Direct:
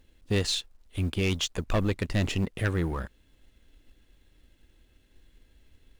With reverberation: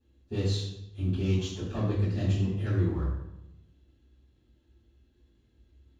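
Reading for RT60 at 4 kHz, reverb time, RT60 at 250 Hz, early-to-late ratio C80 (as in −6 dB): 0.65 s, 0.90 s, 1.1 s, 4.5 dB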